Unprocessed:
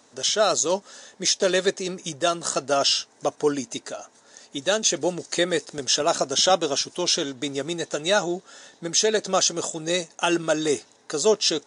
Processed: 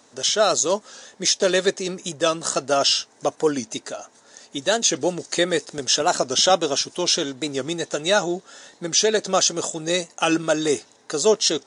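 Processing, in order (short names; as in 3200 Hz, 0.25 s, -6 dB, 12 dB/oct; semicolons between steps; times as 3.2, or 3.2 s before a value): record warp 45 rpm, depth 100 cents; gain +2 dB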